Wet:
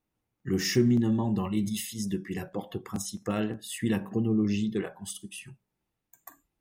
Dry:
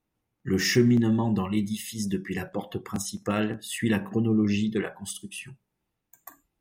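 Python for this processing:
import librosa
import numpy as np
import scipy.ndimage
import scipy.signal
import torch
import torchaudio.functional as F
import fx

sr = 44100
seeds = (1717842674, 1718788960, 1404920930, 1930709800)

y = fx.dynamic_eq(x, sr, hz=1900.0, q=0.98, threshold_db=-44.0, ratio=4.0, max_db=-5)
y = fx.sustainer(y, sr, db_per_s=74.0, at=(1.38, 2.0))
y = F.gain(torch.from_numpy(y), -2.5).numpy()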